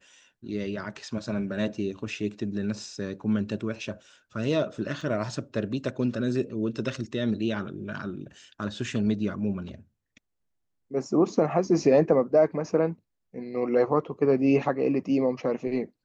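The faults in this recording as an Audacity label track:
5.010000	5.010000	drop-out 2.6 ms

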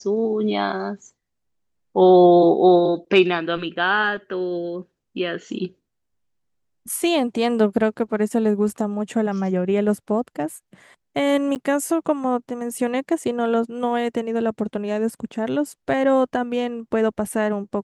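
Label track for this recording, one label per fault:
11.550000	11.560000	drop-out 9.2 ms

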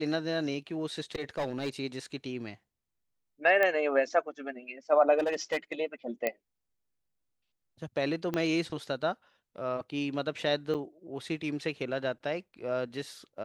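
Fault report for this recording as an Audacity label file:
1.150000	1.690000	clipping −27.5 dBFS
3.630000	3.630000	click −15 dBFS
5.180000	5.720000	clipping −24.5 dBFS
6.270000	6.270000	click −15 dBFS
8.340000	8.340000	click −18 dBFS
10.740000	10.750000	drop-out 7.2 ms

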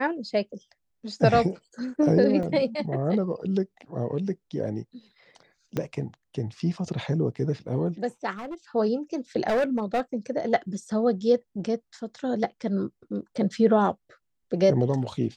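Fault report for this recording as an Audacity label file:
2.430000	2.430000	drop-out 2.1 ms
5.770000	5.770000	click −15 dBFS
8.310000	8.550000	clipping −31.5 dBFS
9.480000	10.010000	clipping −20 dBFS

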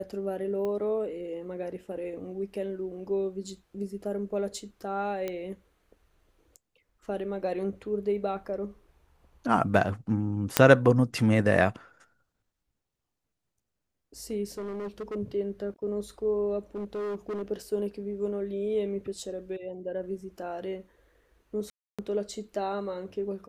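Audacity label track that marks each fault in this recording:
0.650000	0.650000	click −23 dBFS
5.280000	5.280000	click −19 dBFS
10.570000	10.570000	click −2 dBFS
14.580000	15.160000	clipping −32 dBFS
16.750000	17.430000	clipping −30 dBFS
21.700000	21.990000	drop-out 286 ms

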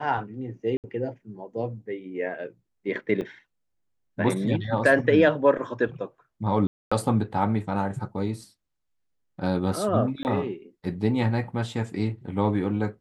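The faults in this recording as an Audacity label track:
0.770000	0.840000	drop-out 68 ms
3.210000	3.210000	drop-out 4.6 ms
6.670000	6.920000	drop-out 245 ms
10.230000	10.250000	drop-out 19 ms

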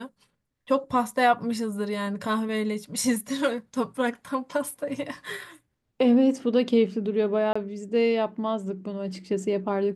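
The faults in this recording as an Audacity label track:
7.530000	7.550000	drop-out 25 ms

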